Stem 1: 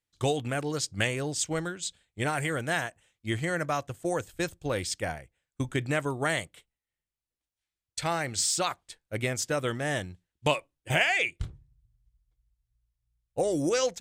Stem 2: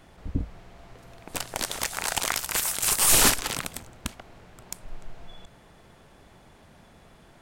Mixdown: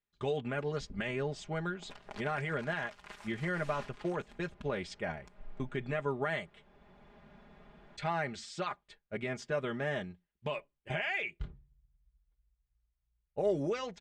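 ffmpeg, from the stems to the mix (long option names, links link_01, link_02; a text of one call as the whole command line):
ffmpeg -i stem1.wav -i stem2.wav -filter_complex "[0:a]alimiter=limit=-21dB:level=0:latency=1:release=68,volume=-4dB,asplit=2[link_01][link_02];[1:a]acompressor=threshold=-36dB:ratio=2,adelay=550,volume=-5.5dB[link_03];[link_02]apad=whole_len=351292[link_04];[link_03][link_04]sidechaincompress=threshold=-38dB:ratio=10:attack=5.2:release=1080[link_05];[link_01][link_05]amix=inputs=2:normalize=0,lowpass=2700,aecho=1:1:4.9:0.71" out.wav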